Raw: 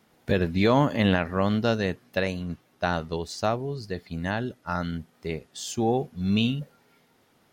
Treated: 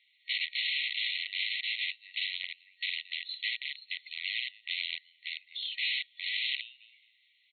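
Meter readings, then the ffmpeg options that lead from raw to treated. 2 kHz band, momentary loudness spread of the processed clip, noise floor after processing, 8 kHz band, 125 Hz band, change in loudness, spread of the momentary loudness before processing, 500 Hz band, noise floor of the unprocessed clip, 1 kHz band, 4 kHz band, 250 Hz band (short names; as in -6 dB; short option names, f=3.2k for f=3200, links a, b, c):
0.0 dB, 9 LU, -69 dBFS, under -40 dB, under -40 dB, -6.5 dB, 13 LU, under -40 dB, -64 dBFS, under -40 dB, +5.0 dB, under -40 dB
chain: -filter_complex "[0:a]asplit=2[a][b];[b]adelay=218,lowpass=f=3.3k:p=1,volume=-17.5dB,asplit=2[c][d];[d]adelay=218,lowpass=f=3.3k:p=1,volume=0.33,asplit=2[e][f];[f]adelay=218,lowpass=f=3.3k:p=1,volume=0.33[g];[a][c][e][g]amix=inputs=4:normalize=0,aeval=exprs='(mod(17.8*val(0)+1,2)-1)/17.8':c=same,afftfilt=real='re*between(b*sr/4096,1900,4300)':imag='im*between(b*sr/4096,1900,4300)':win_size=4096:overlap=0.75,volume=4dB"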